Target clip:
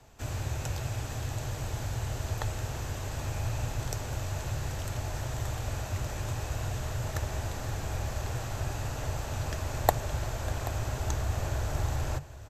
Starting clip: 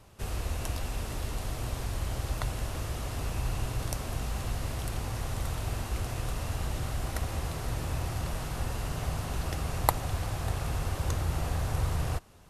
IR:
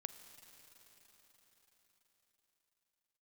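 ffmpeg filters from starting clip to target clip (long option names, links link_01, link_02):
-af "superequalizer=9b=1.58:11b=1.41:15b=1.58:16b=0.398,aecho=1:1:782:0.158,afreqshift=-150,volume=-1dB"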